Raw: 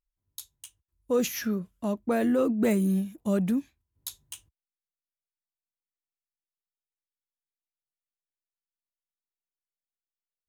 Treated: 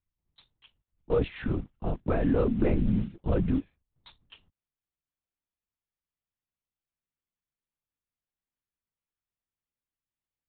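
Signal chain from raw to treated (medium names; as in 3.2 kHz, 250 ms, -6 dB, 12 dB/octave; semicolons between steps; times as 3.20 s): modulation noise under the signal 22 dB; distance through air 210 m; LPC vocoder at 8 kHz whisper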